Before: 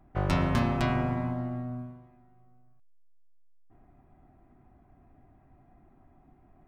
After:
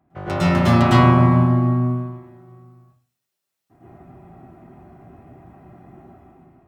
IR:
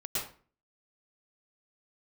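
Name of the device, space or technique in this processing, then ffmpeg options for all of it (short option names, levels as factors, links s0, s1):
far laptop microphone: -filter_complex "[1:a]atrim=start_sample=2205[s0];[0:a][s0]afir=irnorm=-1:irlink=0,highpass=100,dynaudnorm=f=190:g=7:m=3.16,volume=1.26"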